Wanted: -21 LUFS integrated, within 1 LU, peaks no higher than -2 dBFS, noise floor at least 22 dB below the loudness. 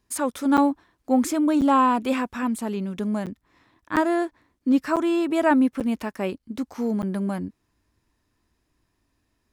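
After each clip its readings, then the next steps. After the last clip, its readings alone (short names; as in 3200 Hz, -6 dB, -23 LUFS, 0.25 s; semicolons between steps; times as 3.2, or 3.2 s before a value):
dropouts 7; longest dropout 7.9 ms; loudness -23.5 LUFS; peak -8.5 dBFS; loudness target -21.0 LUFS
-> interpolate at 0.57/1.61/3.26/3.96/4.96/5.8/7.02, 7.9 ms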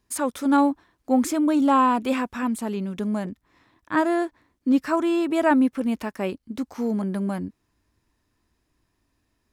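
dropouts 0; loudness -23.5 LUFS; peak -8.5 dBFS; loudness target -21.0 LUFS
-> gain +2.5 dB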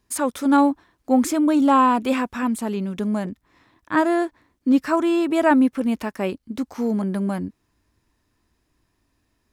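loudness -21.0 LUFS; peak -6.0 dBFS; noise floor -71 dBFS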